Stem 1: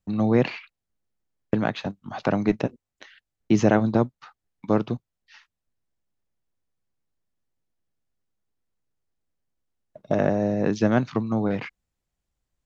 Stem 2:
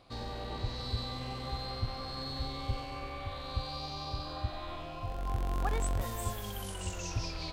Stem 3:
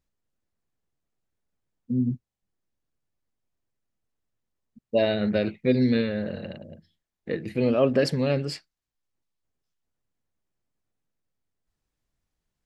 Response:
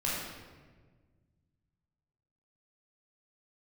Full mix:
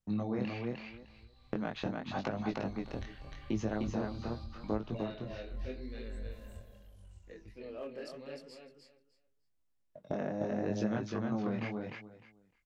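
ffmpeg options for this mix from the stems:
-filter_complex "[0:a]acompressor=threshold=-26dB:ratio=6,volume=-3dB,asplit=2[link_01][link_02];[link_02]volume=-3dB[link_03];[1:a]asubboost=boost=8.5:cutoff=140,acompressor=threshold=-30dB:ratio=2.5,adelay=300,volume=-10dB,afade=type=in:start_time=2.58:duration=0.41:silence=0.223872,afade=type=out:start_time=6.16:duration=0.67:silence=0.237137[link_04];[2:a]highpass=290,asoftclip=type=hard:threshold=-13.5dB,volume=-17.5dB,asplit=3[link_05][link_06][link_07];[link_06]volume=-6dB[link_08];[link_07]apad=whole_len=345113[link_09];[link_04][link_09]sidechaincompress=threshold=-48dB:ratio=8:attack=16:release=188[link_10];[link_03][link_08]amix=inputs=2:normalize=0,aecho=0:1:304|608|912:1|0.18|0.0324[link_11];[link_01][link_10][link_05][link_11]amix=inputs=4:normalize=0,flanger=delay=18:depth=7.5:speed=0.82"

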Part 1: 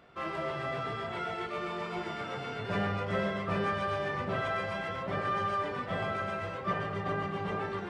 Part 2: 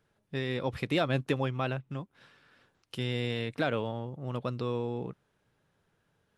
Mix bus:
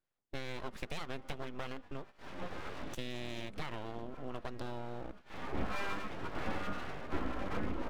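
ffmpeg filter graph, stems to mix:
ffmpeg -i stem1.wav -i stem2.wav -filter_complex "[0:a]aemphasis=mode=reproduction:type=riaa,crystalizer=i=2:c=0,asplit=2[link_01][link_02];[link_02]adelay=9.4,afreqshift=-1.9[link_03];[link_01][link_03]amix=inputs=2:normalize=1,adelay=450,volume=-3.5dB[link_04];[1:a]acompressor=threshold=-33dB:ratio=12,volume=-1.5dB,asplit=2[link_05][link_06];[link_06]apad=whole_len=368647[link_07];[link_04][link_07]sidechaincompress=threshold=-60dB:ratio=5:attack=5.3:release=192[link_08];[link_08][link_05]amix=inputs=2:normalize=0,agate=range=-14dB:threshold=-48dB:ratio=16:detection=peak,aeval=exprs='abs(val(0))':channel_layout=same" out.wav

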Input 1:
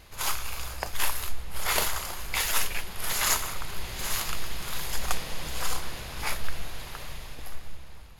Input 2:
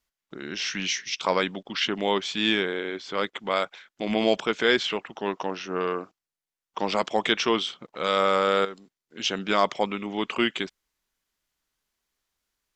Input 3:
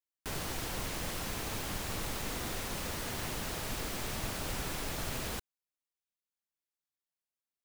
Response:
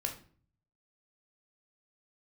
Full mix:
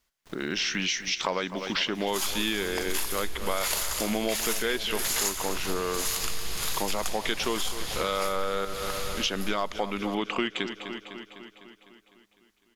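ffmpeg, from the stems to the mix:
-filter_complex "[0:a]equalizer=frequency=7100:width_type=o:width=2.3:gain=8.5,adelay=1950,volume=3dB,asplit=2[link_01][link_02];[link_02]volume=-18.5dB[link_03];[1:a]acontrast=66,volume=-1dB,asplit=2[link_04][link_05];[link_05]volume=-15.5dB[link_06];[2:a]acrossover=split=7500[link_07][link_08];[link_08]acompressor=threshold=-52dB:ratio=4:attack=1:release=60[link_09];[link_07][link_09]amix=inputs=2:normalize=0,acrusher=bits=5:dc=4:mix=0:aa=0.000001,volume=-10.5dB[link_10];[link_03][link_06]amix=inputs=2:normalize=0,aecho=0:1:252|504|756|1008|1260|1512|1764|2016|2268|2520:1|0.6|0.36|0.216|0.13|0.0778|0.0467|0.028|0.0168|0.0101[link_11];[link_01][link_04][link_10][link_11]amix=inputs=4:normalize=0,acompressor=threshold=-25dB:ratio=6"

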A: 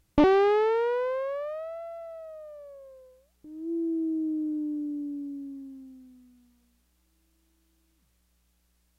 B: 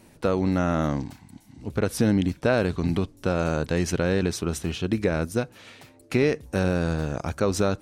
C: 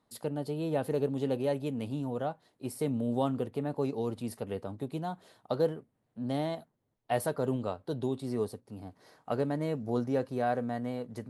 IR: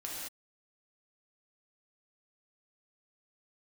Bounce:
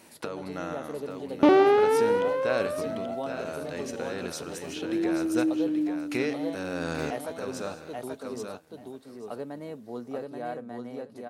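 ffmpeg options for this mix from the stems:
-filter_complex "[0:a]highpass=160,adelay=1250,volume=0.5dB,asplit=2[link_01][link_02];[link_02]volume=-10.5dB[link_03];[1:a]highpass=frequency=540:poles=1,volume=3dB,asplit=3[link_04][link_05][link_06];[link_05]volume=-23dB[link_07];[link_06]volume=-17dB[link_08];[2:a]highpass=210,volume=-5.5dB,asplit=3[link_09][link_10][link_11];[link_10]volume=-3.5dB[link_12];[link_11]apad=whole_len=344807[link_13];[link_04][link_13]sidechaincompress=threshold=-47dB:ratio=12:attack=5.9:release=561[link_14];[3:a]atrim=start_sample=2205[link_15];[link_03][link_07]amix=inputs=2:normalize=0[link_16];[link_16][link_15]afir=irnorm=-1:irlink=0[link_17];[link_08][link_12]amix=inputs=2:normalize=0,aecho=0:1:832|1664|2496:1|0.15|0.0225[link_18];[link_01][link_14][link_09][link_17][link_18]amix=inputs=5:normalize=0"

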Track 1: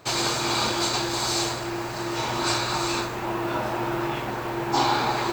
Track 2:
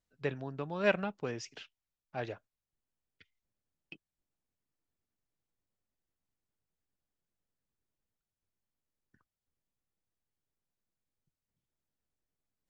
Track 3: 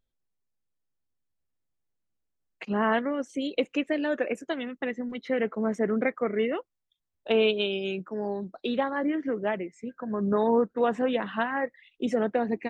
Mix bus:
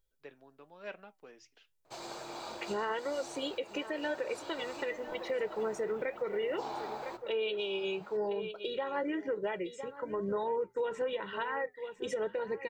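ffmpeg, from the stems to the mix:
ffmpeg -i stem1.wav -i stem2.wav -i stem3.wav -filter_complex "[0:a]equalizer=frequency=630:width_type=o:width=1.3:gain=10.5,adelay=1850,volume=-18.5dB,asplit=2[link_01][link_02];[link_02]volume=-10.5dB[link_03];[1:a]highpass=310,volume=-10.5dB[link_04];[2:a]highshelf=frequency=5100:gain=8,aecho=1:1:2.1:0.83,volume=0.5dB,asplit=2[link_05][link_06];[link_06]volume=-17dB[link_07];[link_03][link_07]amix=inputs=2:normalize=0,aecho=0:1:1006:1[link_08];[link_01][link_04][link_05][link_08]amix=inputs=4:normalize=0,flanger=delay=5.1:depth=3.2:regen=-78:speed=0.95:shape=triangular,bandreject=frequency=60:width_type=h:width=6,bandreject=frequency=120:width_type=h:width=6,alimiter=level_in=2dB:limit=-24dB:level=0:latency=1:release=204,volume=-2dB" out.wav

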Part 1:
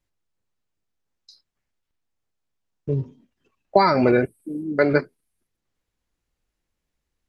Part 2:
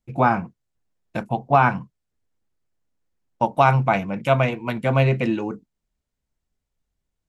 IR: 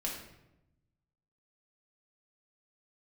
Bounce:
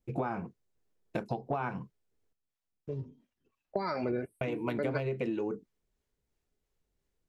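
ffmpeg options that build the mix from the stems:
-filter_complex "[0:a]acrossover=split=510[link_01][link_02];[link_01]aeval=exprs='val(0)*(1-0.7/2+0.7/2*cos(2*PI*2.9*n/s))':channel_layout=same[link_03];[link_02]aeval=exprs='val(0)*(1-0.7/2-0.7/2*cos(2*PI*2.9*n/s))':channel_layout=same[link_04];[link_03][link_04]amix=inputs=2:normalize=0,volume=-6dB[link_05];[1:a]equalizer=frequency=410:width=2.1:gain=10.5,acompressor=threshold=-20dB:ratio=6,volume=-3.5dB,asplit=3[link_06][link_07][link_08];[link_06]atrim=end=2.33,asetpts=PTS-STARTPTS,afade=type=out:start_time=2.326:duration=0.004:curve=hsin[link_09];[link_07]atrim=start=2.33:end=4.41,asetpts=PTS-STARTPTS,volume=0[link_10];[link_08]atrim=start=4.41,asetpts=PTS-STARTPTS,afade=type=in:duration=0.004:curve=hsin[link_11];[link_09][link_10][link_11]concat=n=3:v=0:a=1[link_12];[link_05][link_12]amix=inputs=2:normalize=0,acompressor=threshold=-32dB:ratio=2.5"

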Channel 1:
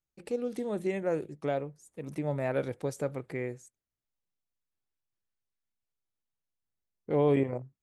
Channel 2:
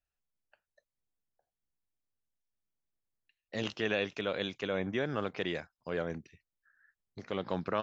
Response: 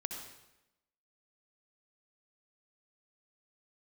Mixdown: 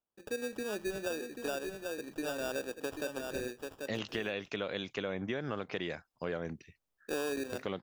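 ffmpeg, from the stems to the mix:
-filter_complex "[0:a]highpass=frequency=240:width=0.5412,highpass=frequency=240:width=1.3066,acrusher=samples=21:mix=1:aa=0.000001,volume=-2.5dB,asplit=3[link_01][link_02][link_03];[link_02]volume=-22.5dB[link_04];[link_03]volume=-6.5dB[link_05];[1:a]adelay=350,volume=2.5dB[link_06];[2:a]atrim=start_sample=2205[link_07];[link_04][link_07]afir=irnorm=-1:irlink=0[link_08];[link_05]aecho=0:1:788:1[link_09];[link_01][link_06][link_08][link_09]amix=inputs=4:normalize=0,acompressor=threshold=-32dB:ratio=6"

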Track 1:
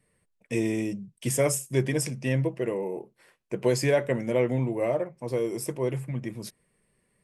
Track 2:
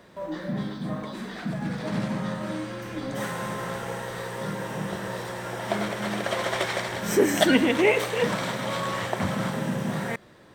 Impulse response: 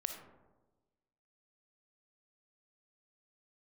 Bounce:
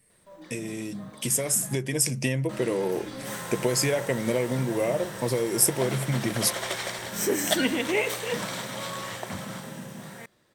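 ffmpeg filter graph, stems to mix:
-filter_complex "[0:a]acompressor=threshold=-33dB:ratio=10,volume=1.5dB[link_01];[1:a]adelay=100,volume=-15dB,asplit=3[link_02][link_03][link_04];[link_02]atrim=end=1.76,asetpts=PTS-STARTPTS,afade=type=out:start_time=1.756:duration=0.004:curve=hsin[link_05];[link_03]atrim=start=1.76:end=2.49,asetpts=PTS-STARTPTS,volume=0[link_06];[link_04]atrim=start=2.49,asetpts=PTS-STARTPTS,afade=type=in:duration=0.004:curve=hsin[link_07];[link_05][link_06][link_07]concat=n=3:v=0:a=1[link_08];[link_01][link_08]amix=inputs=2:normalize=0,highshelf=frequency=4100:gain=12,dynaudnorm=framelen=370:gausssize=9:maxgain=9dB"

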